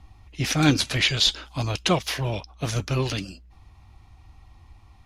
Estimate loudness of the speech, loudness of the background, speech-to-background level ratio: -24.0 LUFS, -37.5 LUFS, 13.5 dB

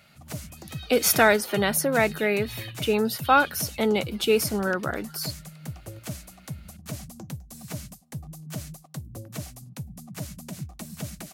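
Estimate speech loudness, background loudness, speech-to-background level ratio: -23.5 LUFS, -39.0 LUFS, 15.5 dB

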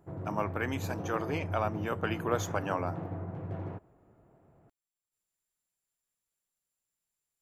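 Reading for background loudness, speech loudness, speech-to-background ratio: -39.0 LUFS, -34.5 LUFS, 4.5 dB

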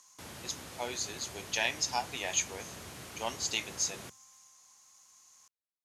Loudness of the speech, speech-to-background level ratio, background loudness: -34.0 LUFS, 12.0 dB, -46.0 LUFS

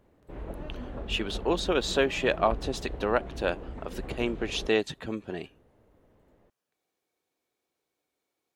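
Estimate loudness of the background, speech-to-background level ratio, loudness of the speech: -40.5 LUFS, 11.0 dB, -29.5 LUFS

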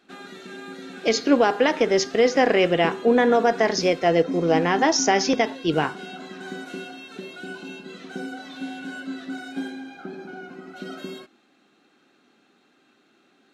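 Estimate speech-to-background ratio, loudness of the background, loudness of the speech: 15.0 dB, -35.5 LUFS, -20.5 LUFS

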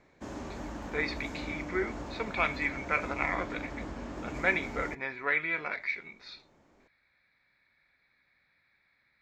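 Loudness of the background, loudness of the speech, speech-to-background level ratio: -41.0 LUFS, -32.5 LUFS, 8.5 dB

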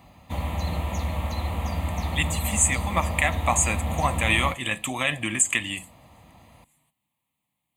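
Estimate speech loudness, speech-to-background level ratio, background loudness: -24.5 LUFS, 5.0 dB, -29.5 LUFS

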